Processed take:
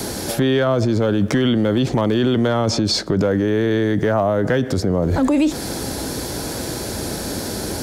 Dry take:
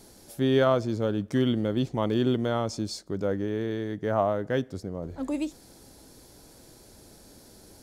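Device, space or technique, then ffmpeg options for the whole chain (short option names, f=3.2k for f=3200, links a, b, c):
mastering chain: -filter_complex "[0:a]highpass=53,equalizer=f=1.6k:t=o:w=0.42:g=2.5,acrossover=split=210|570|4700[a][b][c][d];[a]acompressor=threshold=-33dB:ratio=4[e];[b]acompressor=threshold=-29dB:ratio=4[f];[c]acompressor=threshold=-31dB:ratio=4[g];[d]acompressor=threshold=-58dB:ratio=4[h];[e][f][g][h]amix=inputs=4:normalize=0,acompressor=threshold=-32dB:ratio=2.5,asoftclip=type=hard:threshold=-25.5dB,alimiter=level_in=36dB:limit=-1dB:release=50:level=0:latency=1,volume=-9dB"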